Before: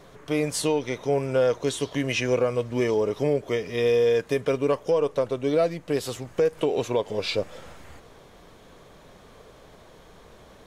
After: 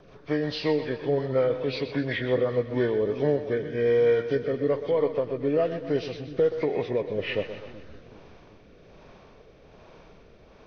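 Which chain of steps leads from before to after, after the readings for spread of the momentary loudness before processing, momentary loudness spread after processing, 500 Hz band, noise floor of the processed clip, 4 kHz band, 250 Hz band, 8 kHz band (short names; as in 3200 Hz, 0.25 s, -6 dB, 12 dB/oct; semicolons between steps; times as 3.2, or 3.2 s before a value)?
6 LU, 6 LU, -1.0 dB, -53 dBFS, -4.5 dB, -1.0 dB, under -20 dB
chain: nonlinear frequency compression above 1100 Hz 1.5:1; rotary speaker horn 5.5 Hz, later 1.2 Hz, at 2.25; split-band echo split 330 Hz, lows 0.381 s, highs 0.125 s, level -11 dB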